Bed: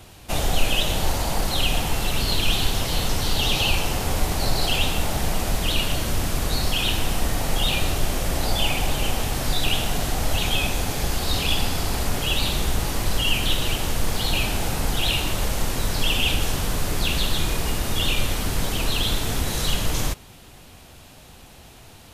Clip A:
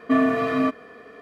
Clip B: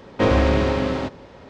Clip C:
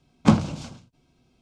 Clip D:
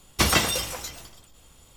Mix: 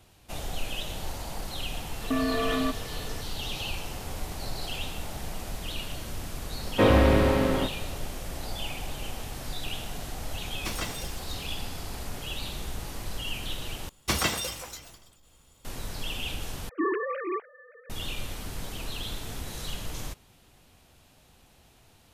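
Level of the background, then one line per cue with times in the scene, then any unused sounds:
bed -12.5 dB
2.01 add A + compressor, threshold -24 dBFS
6.59 add B -2 dB + LPF 4800 Hz
10.46 add D -14 dB
13.89 replace with D -6 dB
16.69 replace with A -9 dB + sine-wave speech
not used: C

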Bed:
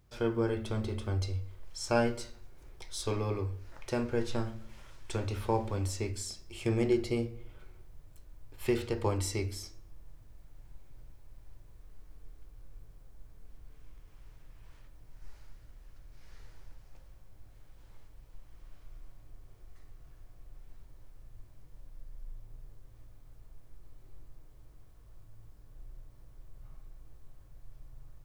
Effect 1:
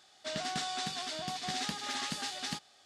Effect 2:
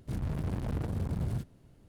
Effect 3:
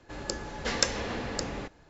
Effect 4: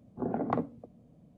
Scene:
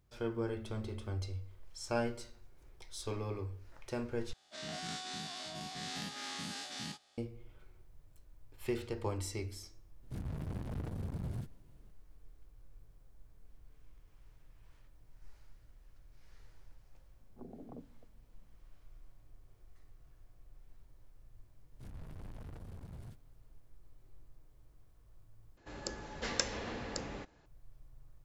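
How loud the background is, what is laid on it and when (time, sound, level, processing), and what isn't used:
bed -6.5 dB
4.33 replace with 1 -11 dB + spectral dilation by 0.12 s
10.03 add 2 -7 dB
17.19 add 4 -17 dB + treble ducked by the level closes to 490 Hz, closed at -29.5 dBFS
21.72 add 2 -13 dB + bell 200 Hz -5.5 dB 2.8 oct
25.57 replace with 3 -7.5 dB

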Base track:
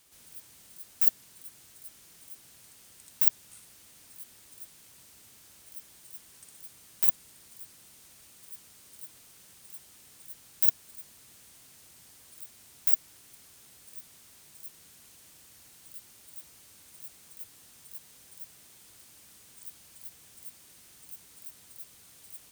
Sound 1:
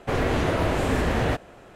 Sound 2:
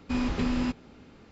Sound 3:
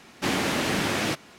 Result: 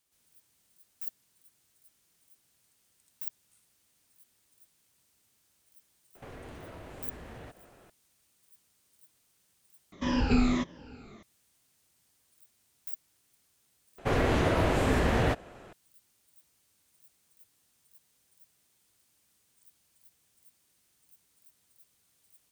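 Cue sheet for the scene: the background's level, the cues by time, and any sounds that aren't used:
base track -15.5 dB
6.15 add 1 -10 dB + compressor 4:1, threshold -35 dBFS
9.92 replace with 2 -0.5 dB + moving spectral ripple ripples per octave 1.2, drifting -1.6 Hz, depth 16 dB
13.98 replace with 1 -2.5 dB
not used: 3

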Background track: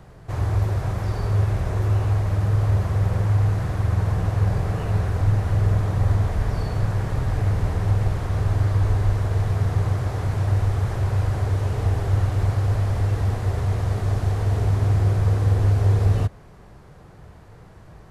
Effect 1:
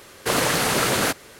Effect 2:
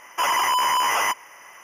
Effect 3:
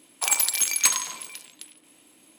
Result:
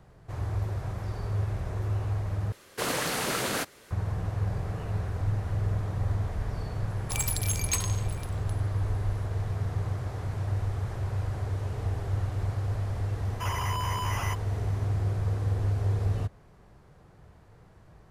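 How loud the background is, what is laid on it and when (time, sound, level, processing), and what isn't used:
background track -9 dB
2.52 replace with 1 -8.5 dB
6.88 add 3 -9.5 dB
13.22 add 2 -13 dB

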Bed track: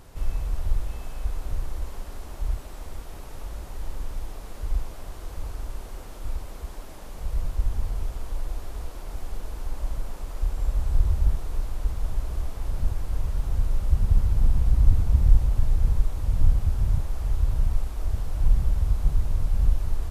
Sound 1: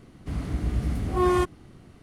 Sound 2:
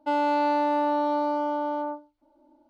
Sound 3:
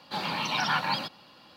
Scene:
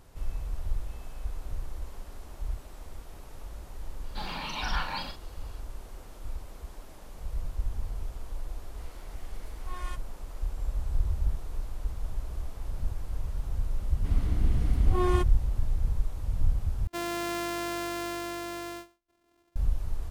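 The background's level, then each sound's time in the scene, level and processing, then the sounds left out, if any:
bed track -6.5 dB
4.04 add 3 -7 dB + doubler 41 ms -6 dB
8.51 add 1 -11 dB + HPF 1300 Hz
13.78 add 1 -6 dB + bell 3300 Hz +3 dB
16.87 replace with 2 -9 dB + sample sorter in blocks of 128 samples

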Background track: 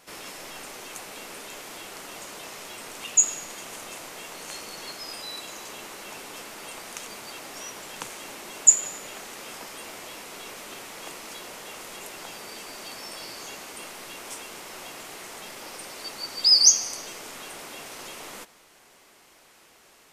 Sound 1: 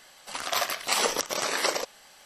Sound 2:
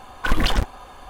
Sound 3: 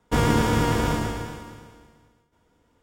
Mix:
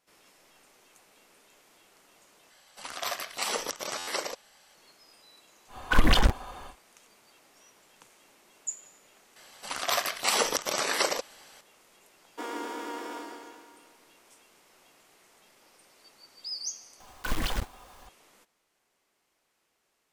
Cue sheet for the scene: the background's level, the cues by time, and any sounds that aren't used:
background track -20 dB
2.5 replace with 1 -6 dB + stuck buffer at 1.47
5.67 add 2 -1 dB, fades 0.10 s
9.36 add 1 -0.5 dB
12.26 add 3 -11.5 dB + rippled Chebyshev high-pass 250 Hz, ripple 3 dB
17 add 2 -11 dB + block floating point 3-bit

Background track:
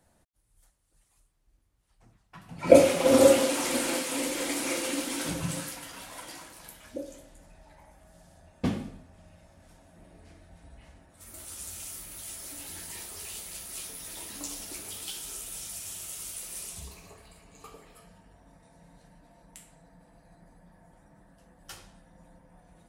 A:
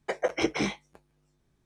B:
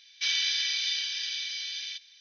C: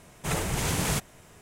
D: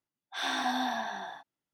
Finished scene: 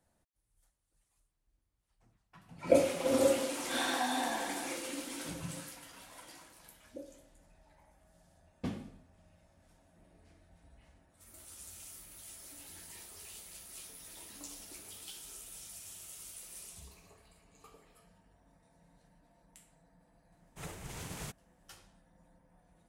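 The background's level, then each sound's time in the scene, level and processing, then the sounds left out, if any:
background track -9.5 dB
3.35 add D -3 dB
20.32 add C -15 dB + upward expander, over -44 dBFS
not used: A, B

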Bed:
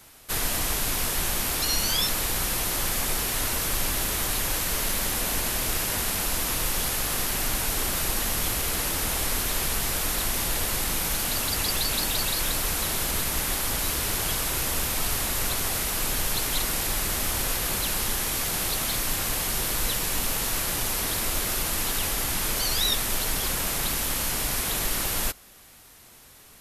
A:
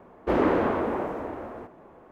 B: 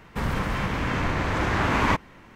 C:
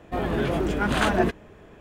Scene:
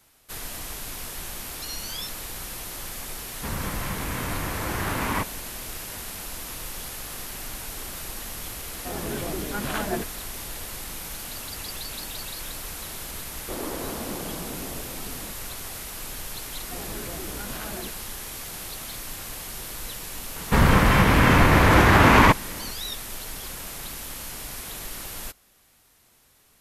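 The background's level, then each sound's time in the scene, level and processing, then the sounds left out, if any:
bed -9 dB
3.27 add B -5 dB
8.73 add C -7 dB + HPF 51 Hz
13.21 add A -12 dB + echoes that change speed 0.186 s, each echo -5 st, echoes 2
16.59 add C -8.5 dB + compressor, threshold -25 dBFS
20.36 add B -4 dB + maximiser +13.5 dB

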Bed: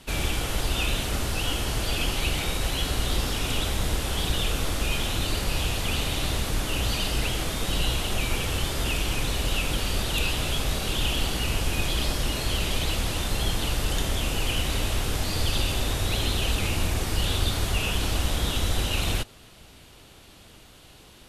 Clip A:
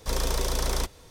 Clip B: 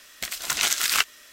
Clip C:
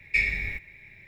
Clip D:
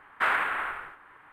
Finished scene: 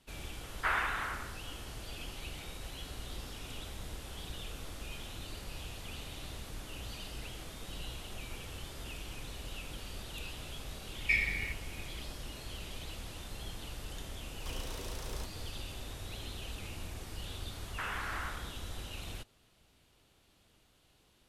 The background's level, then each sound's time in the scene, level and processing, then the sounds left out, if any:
bed -17.5 dB
0.43 add D -6.5 dB
10.95 add C -5.5 dB
14.4 add A -4 dB + compressor 3:1, threshold -38 dBFS
17.58 add D -8 dB + compressor, threshold -27 dBFS
not used: B

